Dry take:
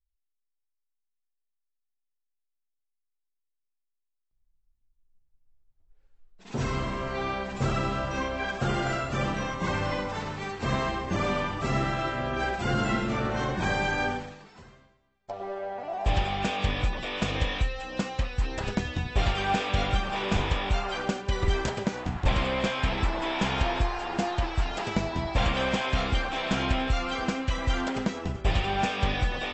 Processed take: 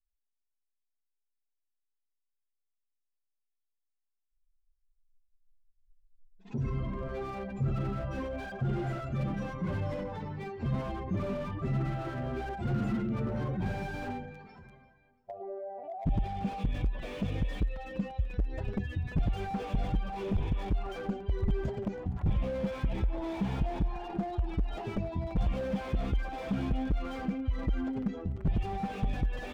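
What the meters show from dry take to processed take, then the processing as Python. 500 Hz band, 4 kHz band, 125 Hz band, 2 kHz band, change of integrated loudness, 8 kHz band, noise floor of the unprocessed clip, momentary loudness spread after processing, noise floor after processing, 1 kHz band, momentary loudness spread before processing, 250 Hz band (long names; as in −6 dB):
−6.5 dB, −17.5 dB, −2.0 dB, −14.5 dB, −5.5 dB, can't be measured, −80 dBFS, 5 LU, −82 dBFS, −10.5 dB, 5 LU, −2.5 dB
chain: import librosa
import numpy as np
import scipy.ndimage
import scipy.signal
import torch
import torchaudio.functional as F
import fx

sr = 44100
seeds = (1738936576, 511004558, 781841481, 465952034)

p1 = fx.spec_expand(x, sr, power=1.9)
p2 = fx.dynamic_eq(p1, sr, hz=1100.0, q=0.87, threshold_db=-45.0, ratio=4.0, max_db=-7)
p3 = (np.mod(10.0 ** (18.0 / 20.0) * p2 + 1.0, 2.0) - 1.0) / 10.0 ** (18.0 / 20.0)
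p4 = p3 + fx.echo_feedback(p3, sr, ms=342, feedback_pct=45, wet_db=-21.5, dry=0)
p5 = fx.slew_limit(p4, sr, full_power_hz=17.0)
y = p5 * 10.0 ** (-2.5 / 20.0)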